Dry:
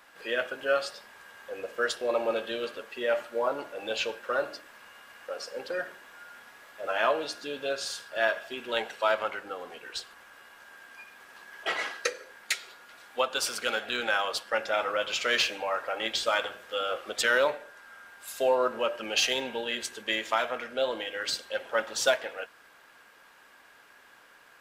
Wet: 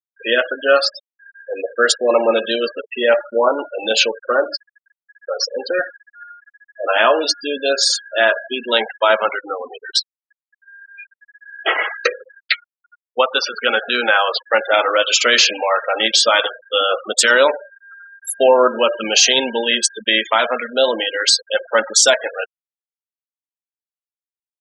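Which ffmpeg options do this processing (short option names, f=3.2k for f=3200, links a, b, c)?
-filter_complex "[0:a]asettb=1/sr,asplit=3[a][b][c];[a]atrim=end=4.084[d];[b]atrim=start=4.08:end=4.5,asetpts=PTS-STARTPTS,afade=t=in:d=0.004:c=qsin,afade=t=out:st=0.416:d=0.004:c=qsin,lowpass=f=1.8k:p=1[e];[c]atrim=start=4.496[f];[d][e]acrossfade=d=0.004:c1=hsin:c2=qsin[g];[g][f]acrossfade=d=0.004:c1=qsin:c2=hsin,asplit=3[h][i][j];[h]afade=t=out:st=10.82:d=0.02[k];[i]highpass=210,lowpass=3k,afade=t=in:st=10.82:d=0.02,afade=t=out:st=14.7:d=0.02[l];[j]afade=t=in:st=14.7:d=0.02[m];[k][l][m]amix=inputs=3:normalize=0,afftfilt=real='re*gte(hypot(re,im),0.0224)':imag='im*gte(hypot(re,im),0.0224)':win_size=1024:overlap=0.75,bass=f=250:g=4,treble=f=4k:g=13,alimiter=level_in=14dB:limit=-1dB:release=50:level=0:latency=1,volume=-1dB"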